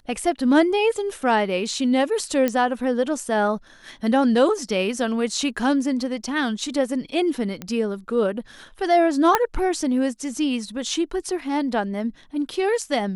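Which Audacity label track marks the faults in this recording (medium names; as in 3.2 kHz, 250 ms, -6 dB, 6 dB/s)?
2.480000	2.480000	pop -9 dBFS
7.620000	7.620000	pop -16 dBFS
9.350000	9.350000	pop -3 dBFS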